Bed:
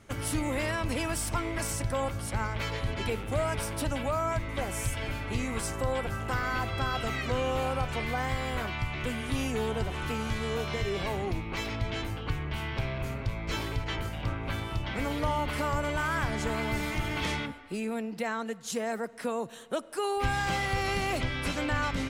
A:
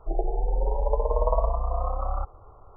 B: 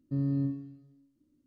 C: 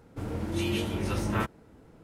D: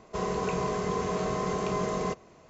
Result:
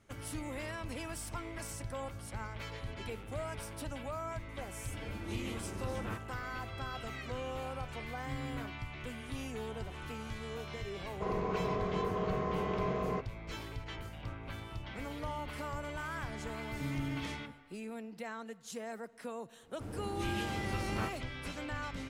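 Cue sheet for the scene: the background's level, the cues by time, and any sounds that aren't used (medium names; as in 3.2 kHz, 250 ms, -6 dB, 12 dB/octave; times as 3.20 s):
bed -10.5 dB
4.72 s: add C -12.5 dB
8.15 s: add B -13.5 dB
11.07 s: add D -4.5 dB + Bessel low-pass 2.1 kHz
16.69 s: add B -5.5 dB + peak limiter -26 dBFS
19.63 s: add C -8.5 dB
not used: A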